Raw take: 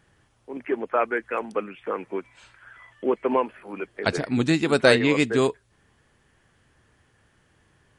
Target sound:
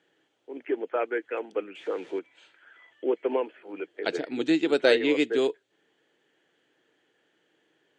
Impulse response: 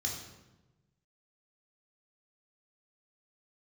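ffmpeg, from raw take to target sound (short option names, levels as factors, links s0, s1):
-filter_complex "[0:a]asettb=1/sr,asplit=3[s0][s1][s2];[s0]atrim=end=1.754[s3];[s1]atrim=start=1.75:end=2.19,asetpts=PTS-STARTPTS,afade=t=in:d=0.004:c=qsin,afade=t=out:st=0.436:d=0.004:c=qsin,aeval=exprs='val(0)+0.5*0.0106*sgn(val(0))':c=same[s4];[s2]atrim=start=2.186[s5];[s3][s4]acrossfade=d=0.004:c1=hsin:c2=qsin[s6];[s6][s5]acrossfade=d=0.004:c1=qsin:c2=hsin,highpass=f=210:w=0.5412,highpass=f=210:w=1.3066,equalizer=f=220:t=q:w=4:g=-9,equalizer=f=320:t=q:w=4:g=6,equalizer=f=460:t=q:w=4:g=5,equalizer=f=1100:t=q:w=4:g=-9,equalizer=f=3200:t=q:w=4:g=6,equalizer=f=5300:t=q:w=4:g=-7,lowpass=f=7000:w=0.5412,lowpass=f=7000:w=1.3066,volume=0.531"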